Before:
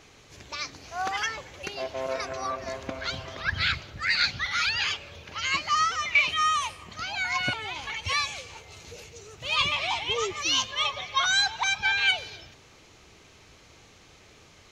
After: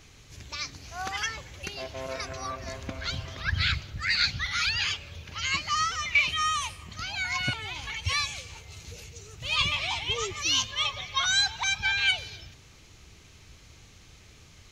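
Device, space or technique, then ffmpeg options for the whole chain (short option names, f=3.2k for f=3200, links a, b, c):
smiley-face EQ: -af "lowshelf=f=150:g=9,equalizer=f=590:t=o:w=2.6:g=-6.5,highshelf=f=9.4k:g=5.5"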